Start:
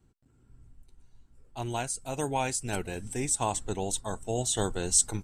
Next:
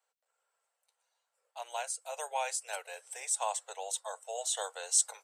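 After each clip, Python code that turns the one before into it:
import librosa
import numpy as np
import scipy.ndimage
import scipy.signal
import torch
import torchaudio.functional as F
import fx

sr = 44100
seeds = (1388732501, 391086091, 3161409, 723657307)

y = scipy.signal.sosfilt(scipy.signal.butter(12, 500.0, 'highpass', fs=sr, output='sos'), x)
y = y * 10.0 ** (-3.5 / 20.0)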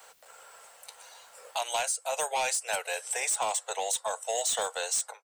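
y = fx.fade_out_tail(x, sr, length_s=0.5)
y = 10.0 ** (-31.0 / 20.0) * np.tanh(y / 10.0 ** (-31.0 / 20.0))
y = fx.band_squash(y, sr, depth_pct=70)
y = y * 10.0 ** (9.0 / 20.0)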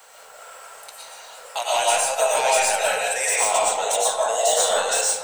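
y = fx.rev_freeverb(x, sr, rt60_s=1.1, hf_ratio=0.5, predelay_ms=75, drr_db=-6.0)
y = y * 10.0 ** (4.0 / 20.0)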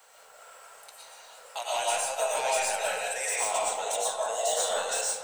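y = x + 10.0 ** (-17.0 / 20.0) * np.pad(x, (int(318 * sr / 1000.0), 0))[:len(x)]
y = y * 10.0 ** (-8.5 / 20.0)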